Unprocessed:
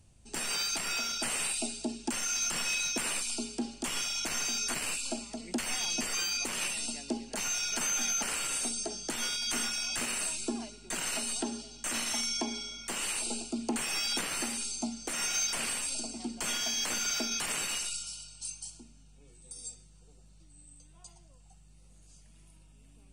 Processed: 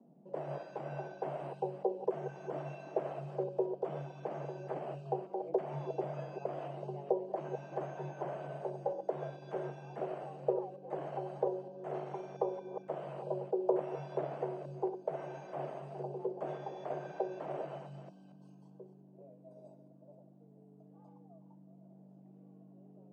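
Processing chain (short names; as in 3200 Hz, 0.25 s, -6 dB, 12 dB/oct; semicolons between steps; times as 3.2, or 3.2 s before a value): reverse delay 0.229 s, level -9 dB; frequency shift +140 Hz; synth low-pass 650 Hz, resonance Q 4.8; gain -3 dB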